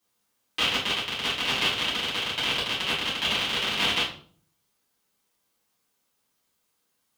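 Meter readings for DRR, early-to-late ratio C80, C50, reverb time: -10.0 dB, 11.5 dB, 5.5 dB, 0.45 s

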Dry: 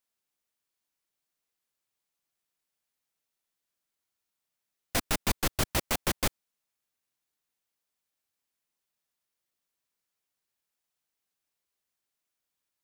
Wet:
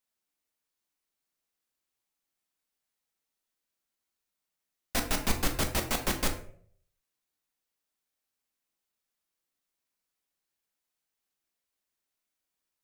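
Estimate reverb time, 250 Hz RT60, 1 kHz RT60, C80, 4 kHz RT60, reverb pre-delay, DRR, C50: 0.55 s, 0.60 s, 0.45 s, 14.0 dB, 0.35 s, 3 ms, 4.0 dB, 10.0 dB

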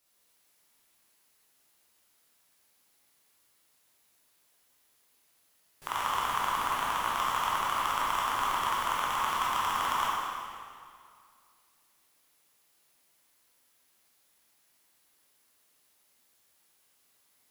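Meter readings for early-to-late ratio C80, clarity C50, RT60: -1.0 dB, -3.0 dB, 2.2 s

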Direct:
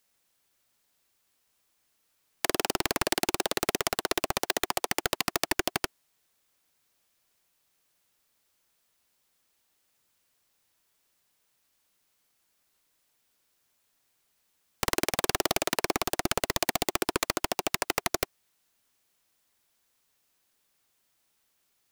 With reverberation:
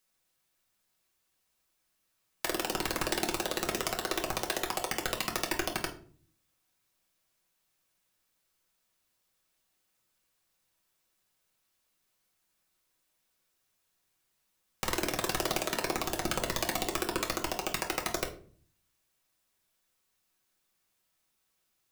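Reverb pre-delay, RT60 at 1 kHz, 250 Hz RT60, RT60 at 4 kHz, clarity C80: 5 ms, 0.40 s, 0.80 s, 0.30 s, 16.5 dB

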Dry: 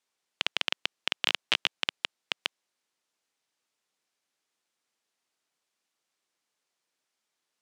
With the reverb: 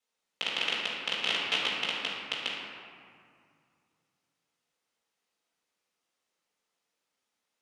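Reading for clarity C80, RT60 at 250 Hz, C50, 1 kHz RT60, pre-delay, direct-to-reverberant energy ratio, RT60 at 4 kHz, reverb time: 1.5 dB, 2.8 s, -0.5 dB, 2.3 s, 4 ms, -6.5 dB, 1.2 s, 2.2 s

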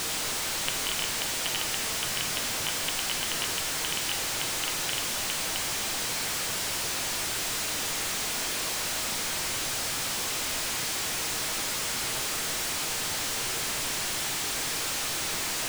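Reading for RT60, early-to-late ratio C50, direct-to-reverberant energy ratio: 1.2 s, 9.0 dB, 5.0 dB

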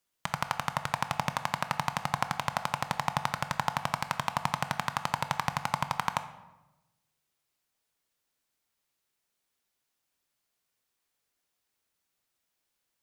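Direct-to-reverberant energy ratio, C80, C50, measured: 10.0 dB, 15.0 dB, 12.0 dB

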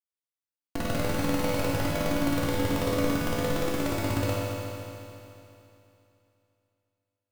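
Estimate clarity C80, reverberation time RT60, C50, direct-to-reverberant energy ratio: -1.5 dB, 2.9 s, -3.0 dB, -7.5 dB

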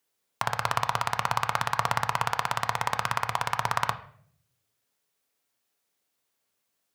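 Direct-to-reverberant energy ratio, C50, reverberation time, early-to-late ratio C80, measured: 7.5 dB, 14.0 dB, 0.60 s, 17.0 dB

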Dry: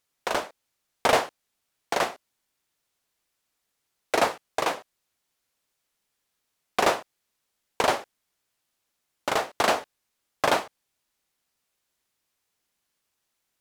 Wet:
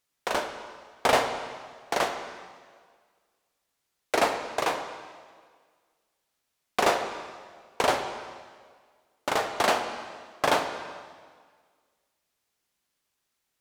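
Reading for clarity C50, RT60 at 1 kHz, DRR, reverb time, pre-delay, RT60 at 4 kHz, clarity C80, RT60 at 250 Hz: 7.5 dB, 1.7 s, 5.5 dB, 1.7 s, 4 ms, 1.6 s, 8.5 dB, 1.7 s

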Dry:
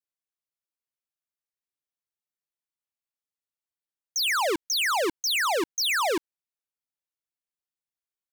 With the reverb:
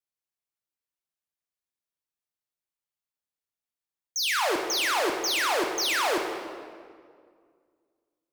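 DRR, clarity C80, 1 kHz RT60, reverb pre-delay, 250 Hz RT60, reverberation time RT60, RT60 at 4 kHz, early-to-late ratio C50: 2.0 dB, 5.0 dB, 1.9 s, 7 ms, 2.4 s, 2.0 s, 1.4 s, 4.0 dB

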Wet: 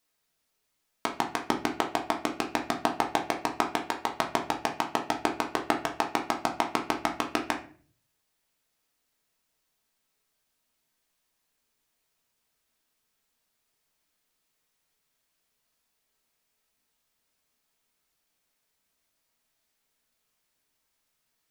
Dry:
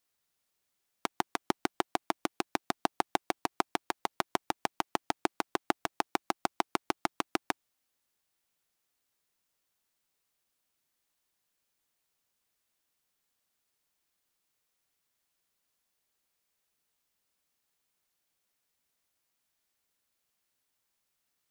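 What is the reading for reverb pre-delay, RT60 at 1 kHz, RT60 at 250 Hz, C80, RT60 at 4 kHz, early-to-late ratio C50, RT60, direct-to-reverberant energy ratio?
3 ms, 0.40 s, 0.70 s, 15.5 dB, 0.35 s, 10.0 dB, 0.45 s, 1.0 dB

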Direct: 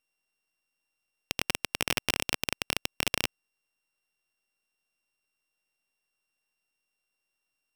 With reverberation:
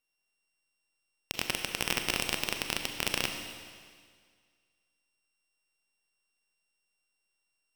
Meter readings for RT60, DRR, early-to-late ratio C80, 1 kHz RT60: 1.9 s, 4.5 dB, 7.0 dB, 1.9 s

